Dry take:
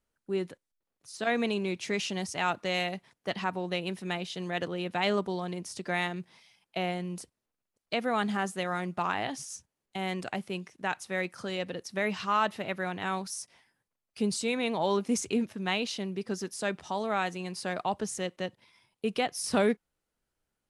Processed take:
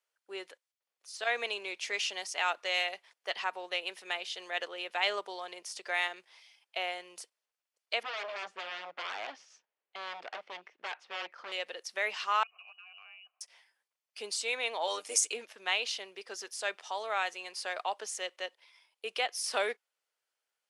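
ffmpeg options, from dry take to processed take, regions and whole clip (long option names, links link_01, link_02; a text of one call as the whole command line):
ffmpeg -i in.wav -filter_complex "[0:a]asettb=1/sr,asplit=3[link_01][link_02][link_03];[link_01]atrim=end=8.034[link_04];[link_02]atrim=start=8.03:end=11.52,asetpts=PTS-STARTPTS,afade=type=in:duration=0.004:curve=qsin,afade=type=out:start_time=3.486:duration=0.004:curve=qsin,aemphasis=mode=reproduction:type=bsi,aeval=exprs='0.0335*(abs(mod(val(0)/0.0335+3,4)-2)-1)':channel_layout=same,lowpass=3400[link_05];[link_03]atrim=start=11.516[link_06];[link_04][link_05]acrossfade=duration=0.004:curve1=hsin:curve2=qsin[link_07];[link_07][link_06]acrossfade=duration=0.004:curve1=qsin:curve2=hsin,asettb=1/sr,asplit=3[link_08][link_09][link_10];[link_08]atrim=end=12.434[link_11];[link_09]atrim=start=12.43:end=13.41,asetpts=PTS-STARTPTS,afade=type=in:duration=0.004:curve=qsin,afade=type=out:start_time=0.976:duration=0.004:curve=qsin,lowpass=frequency=2600:width_type=q:width=0.5098,lowpass=frequency=2600:width_type=q:width=0.6013,lowpass=frequency=2600:width_type=q:width=0.9,lowpass=frequency=2600:width_type=q:width=2.563,afreqshift=-3100,asplit=3[link_12][link_13][link_14];[link_12]bandpass=frequency=730:width_type=q:width=8,volume=0dB[link_15];[link_13]bandpass=frequency=1090:width_type=q:width=8,volume=-6dB[link_16];[link_14]bandpass=frequency=2440:width_type=q:width=8,volume=-9dB[link_17];[link_15][link_16][link_17]amix=inputs=3:normalize=0,acompressor=threshold=-49dB:ratio=16:attack=3.2:release=140:knee=1:detection=peak[link_18];[link_10]atrim=start=13.406[link_19];[link_11][link_18]acrossfade=duration=0.004:curve1=hsin:curve2=qsin[link_20];[link_20][link_19]acrossfade=duration=0.004:curve1=qsin:curve2=hsin,asettb=1/sr,asplit=3[link_21][link_22][link_23];[link_21]atrim=end=14.874[link_24];[link_22]atrim=start=14.87:end=15.33,asetpts=PTS-STARTPTS,afade=type=in:duration=0.004:curve=qsin,afade=type=out:start_time=0.456:duration=0.004:curve=qsin,tremolo=f=100:d=0.571,equalizer=frequency=8900:width=0.86:gain=12,aecho=1:1:6.6:0.72,atrim=end_sample=20286[link_25];[link_23]atrim=start=15.326[link_26];[link_24][link_25]acrossfade=duration=0.004:curve1=hsin:curve2=qsin[link_27];[link_27][link_26]acrossfade=duration=0.004:curve1=qsin:curve2=hsin,highpass=frequency=470:width=0.5412,highpass=frequency=470:width=1.3066,equalizer=frequency=3400:width=0.45:gain=7.5,bandreject=frequency=3900:width=20,volume=-5dB" out.wav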